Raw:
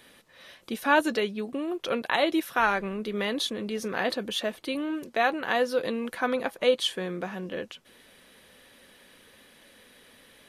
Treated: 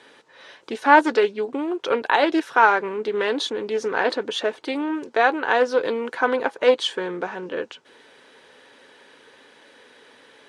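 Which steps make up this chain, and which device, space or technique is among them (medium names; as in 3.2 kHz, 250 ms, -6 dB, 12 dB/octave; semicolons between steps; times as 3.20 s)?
full-range speaker at full volume (loudspeaker Doppler distortion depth 0.17 ms; cabinet simulation 150–8000 Hz, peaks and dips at 200 Hz -9 dB, 290 Hz +3 dB, 430 Hz +8 dB, 900 Hz +9 dB, 1.5 kHz +6 dB); trim +2.5 dB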